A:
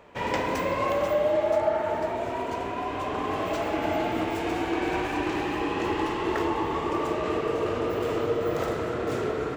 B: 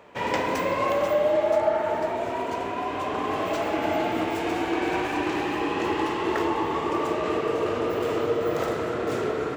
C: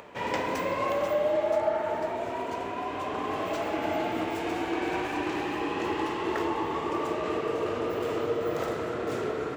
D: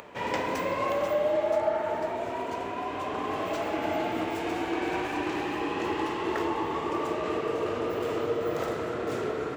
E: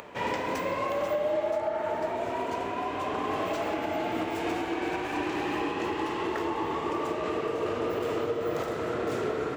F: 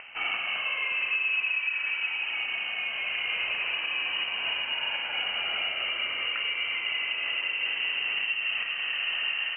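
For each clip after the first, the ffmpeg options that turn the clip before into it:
-af "highpass=f=130:p=1,volume=2dB"
-af "acompressor=mode=upward:threshold=-37dB:ratio=2.5,volume=-4dB"
-af "acompressor=mode=upward:threshold=-45dB:ratio=2.5"
-af "alimiter=limit=-21.5dB:level=0:latency=1:release=279,volume=1.5dB"
-af "lowpass=f=2.7k:t=q:w=0.5098,lowpass=f=2.7k:t=q:w=0.6013,lowpass=f=2.7k:t=q:w=0.9,lowpass=f=2.7k:t=q:w=2.563,afreqshift=-3200"

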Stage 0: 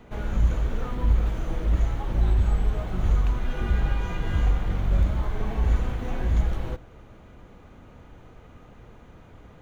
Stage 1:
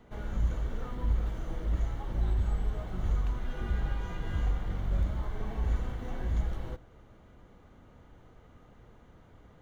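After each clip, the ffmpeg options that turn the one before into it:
-af "bandreject=f=2.5k:w=9.6,volume=-7.5dB"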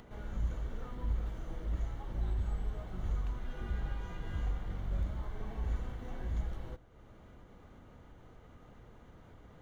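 -af "acompressor=mode=upward:threshold=-41dB:ratio=2.5,volume=-5.5dB"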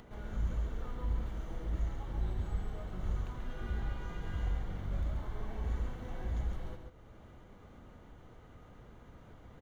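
-af "aecho=1:1:136:0.531"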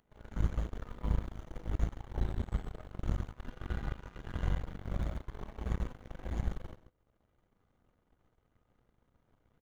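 -af "aeval=exprs='0.0708*(cos(1*acos(clip(val(0)/0.0708,-1,1)))-cos(1*PI/2))+0.0178*(cos(3*acos(clip(val(0)/0.0708,-1,1)))-cos(3*PI/2))+0.00282*(cos(4*acos(clip(val(0)/0.0708,-1,1)))-cos(4*PI/2))+0.002*(cos(7*acos(clip(val(0)/0.0708,-1,1)))-cos(7*PI/2))+0.000562*(cos(8*acos(clip(val(0)/0.0708,-1,1)))-cos(8*PI/2))':c=same,volume=5.5dB"

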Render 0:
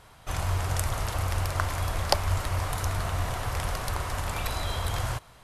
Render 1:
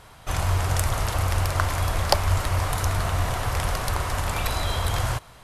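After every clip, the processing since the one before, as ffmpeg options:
-af "acontrast=47,volume=-1dB"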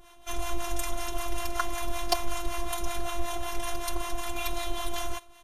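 -filter_complex "[0:a]acrossover=split=640[a][b];[a]aeval=exprs='val(0)*(1-0.7/2+0.7/2*cos(2*PI*5.3*n/s))':c=same[c];[b]aeval=exprs='val(0)*(1-0.7/2-0.7/2*cos(2*PI*5.3*n/s))':c=same[d];[c][d]amix=inputs=2:normalize=0,afftfilt=real='hypot(re,im)*cos(PI*b)':imag='0':win_size=512:overlap=0.75,aecho=1:1:5.5:0.67"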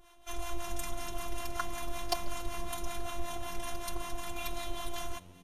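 -filter_complex "[0:a]asplit=6[a][b][c][d][e][f];[b]adelay=139,afreqshift=-91,volume=-24dB[g];[c]adelay=278,afreqshift=-182,volume=-27.9dB[h];[d]adelay=417,afreqshift=-273,volume=-31.8dB[i];[e]adelay=556,afreqshift=-364,volume=-35.6dB[j];[f]adelay=695,afreqshift=-455,volume=-39.5dB[k];[a][g][h][i][j][k]amix=inputs=6:normalize=0,volume=-6dB"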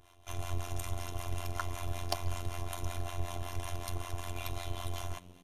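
-af "tremolo=f=89:d=0.974,volume=1.5dB"

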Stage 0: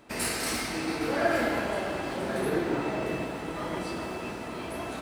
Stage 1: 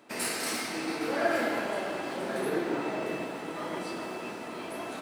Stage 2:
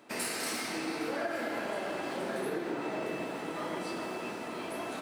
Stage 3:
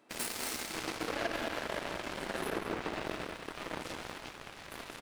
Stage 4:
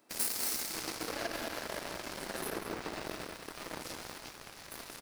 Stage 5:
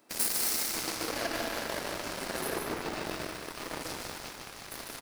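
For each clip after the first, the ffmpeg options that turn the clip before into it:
-af "highpass=200,volume=-1.5dB"
-af "acompressor=threshold=-31dB:ratio=6"
-filter_complex "[0:a]aeval=exprs='0.0891*(cos(1*acos(clip(val(0)/0.0891,-1,1)))-cos(1*PI/2))+0.0178*(cos(7*acos(clip(val(0)/0.0891,-1,1)))-cos(7*PI/2))':c=same,asplit=2[a][b];[b]adelay=192.4,volume=-7dB,highshelf=f=4k:g=-4.33[c];[a][c]amix=inputs=2:normalize=0"
-af "aexciter=amount=1.5:drive=8.6:freq=4.4k,volume=-3dB"
-af "aecho=1:1:149:0.562,volume=3.5dB"

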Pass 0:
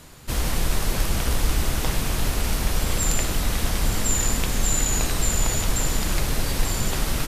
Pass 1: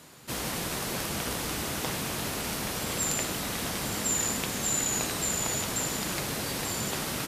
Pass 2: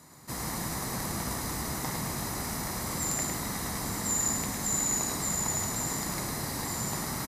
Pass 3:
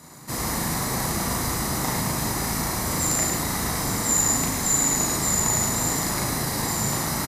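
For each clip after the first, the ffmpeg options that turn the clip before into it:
-af "highpass=150,volume=-3.5dB"
-af "equalizer=f=3k:t=o:w=0.49:g=-14.5,aecho=1:1:1:0.37,aecho=1:1:107:0.596,volume=-2.5dB"
-filter_complex "[0:a]asplit=2[a][b];[b]adelay=37,volume=-2.5dB[c];[a][c]amix=inputs=2:normalize=0,volume=6dB"

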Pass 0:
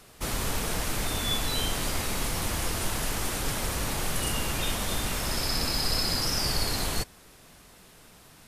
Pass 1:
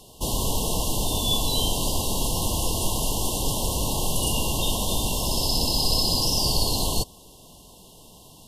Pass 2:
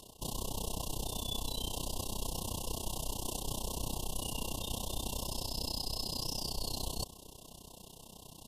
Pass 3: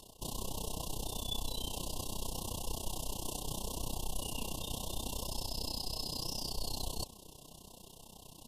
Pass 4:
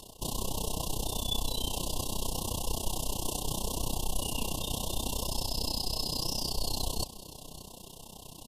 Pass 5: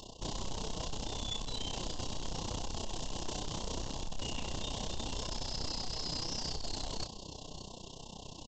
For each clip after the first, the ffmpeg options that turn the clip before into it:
-af "afftfilt=real='re*(1-between(b*sr/4096,1100,2700))':imag='im*(1-between(b*sr/4096,1100,2700))':win_size=4096:overlap=0.75,volume=5dB"
-af "areverse,acompressor=threshold=-31dB:ratio=6,areverse,tremolo=f=31:d=0.889"
-af "flanger=delay=1.1:depth=5.7:regen=80:speed=0.74:shape=sinusoidal,volume=3dB"
-af "aecho=1:1:581:0.119,volume=6dB"
-filter_complex "[0:a]aresample=16000,asoftclip=type=tanh:threshold=-34.5dB,aresample=44100,asplit=2[a][b];[b]adelay=30,volume=-9dB[c];[a][c]amix=inputs=2:normalize=0,volume=1dB"

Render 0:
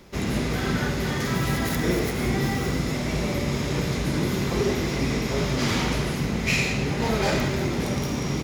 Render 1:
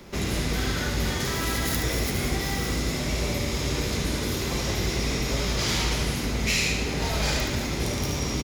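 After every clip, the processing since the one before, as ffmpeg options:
-filter_complex "[0:a]afftfilt=real='re*lt(hypot(re,im),0.398)':imag='im*lt(hypot(re,im),0.398)':win_size=1024:overlap=0.75,acrossover=split=130|3000[a][b][c];[b]acompressor=threshold=-36dB:ratio=2.5[d];[a][d][c]amix=inputs=3:normalize=0,aecho=1:1:73:0.501,volume=3.5dB"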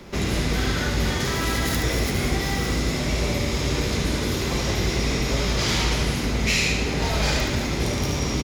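-af "highshelf=f=8.8k:g=-7.5,volume=3.5dB"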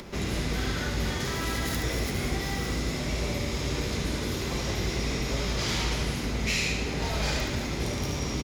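-af "acompressor=mode=upward:threshold=-31dB:ratio=2.5,volume=-6dB"

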